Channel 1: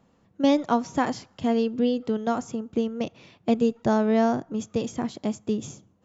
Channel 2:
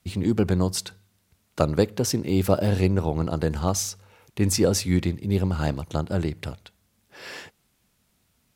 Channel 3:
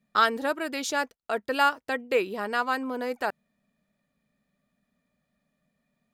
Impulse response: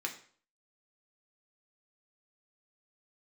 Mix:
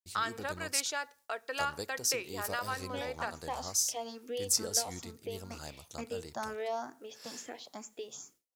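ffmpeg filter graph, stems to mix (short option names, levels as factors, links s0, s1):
-filter_complex "[0:a]asplit=2[s0][s1];[s1]afreqshift=2.2[s2];[s0][s2]amix=inputs=2:normalize=1,adelay=2500,volume=0.562,asplit=2[s3][s4];[s4]volume=0.211[s5];[1:a]highshelf=f=4000:t=q:w=1.5:g=9.5,acrusher=bits=9:mix=0:aa=0.000001,volume=0.178[s6];[2:a]lowpass=7500,volume=0.596,asplit=3[s7][s8][s9];[s8]volume=0.112[s10];[s9]apad=whole_len=376627[s11];[s3][s11]sidechaincompress=threshold=0.00708:ratio=8:attack=16:release=265[s12];[s12][s7]amix=inputs=2:normalize=0,highpass=310,acompressor=threshold=0.0282:ratio=6,volume=1[s13];[3:a]atrim=start_sample=2205[s14];[s5][s10]amix=inputs=2:normalize=0[s15];[s15][s14]afir=irnorm=-1:irlink=0[s16];[s6][s13][s16]amix=inputs=3:normalize=0,highshelf=f=7500:g=4,agate=range=0.0224:threshold=0.00178:ratio=3:detection=peak,equalizer=f=160:t=o:w=2.8:g=-11.5"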